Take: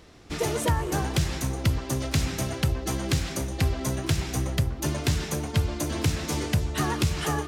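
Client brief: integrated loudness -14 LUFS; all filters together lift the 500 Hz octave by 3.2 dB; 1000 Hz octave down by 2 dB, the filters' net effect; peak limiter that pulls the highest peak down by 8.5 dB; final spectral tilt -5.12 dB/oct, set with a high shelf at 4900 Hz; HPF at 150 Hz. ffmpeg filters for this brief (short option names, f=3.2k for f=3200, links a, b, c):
-af "highpass=150,equalizer=f=500:t=o:g=5,equalizer=f=1k:t=o:g=-4,highshelf=f=4.9k:g=-7.5,volume=17.5dB,alimiter=limit=-2.5dB:level=0:latency=1"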